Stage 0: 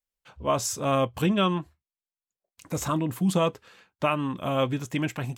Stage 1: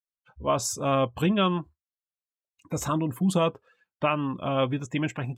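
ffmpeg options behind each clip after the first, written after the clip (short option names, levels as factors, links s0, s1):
-af "afftdn=nr=21:nf=-45"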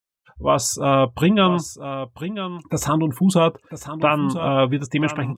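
-af "aecho=1:1:994:0.266,volume=2.24"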